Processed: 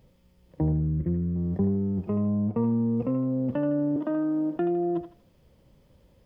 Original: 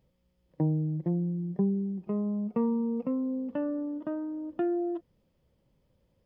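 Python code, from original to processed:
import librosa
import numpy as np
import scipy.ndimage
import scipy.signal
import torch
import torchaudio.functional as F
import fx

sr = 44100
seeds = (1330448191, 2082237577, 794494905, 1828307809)

p1 = fx.octave_divider(x, sr, octaves=1, level_db=-6.0)
p2 = fx.high_shelf(p1, sr, hz=2100.0, db=-9.0, at=(2.16, 2.63))
p3 = fx.steep_highpass(p2, sr, hz=170.0, slope=72, at=(3.96, 4.56))
p4 = fx.over_compress(p3, sr, threshold_db=-36.0, ratio=-1.0)
p5 = p3 + (p4 * 10.0 ** (1.0 / 20.0))
p6 = fx.fixed_phaser(p5, sr, hz=1900.0, stages=4, at=(0.72, 1.36))
y = p6 + fx.echo_thinned(p6, sr, ms=79, feedback_pct=37, hz=750.0, wet_db=-6, dry=0)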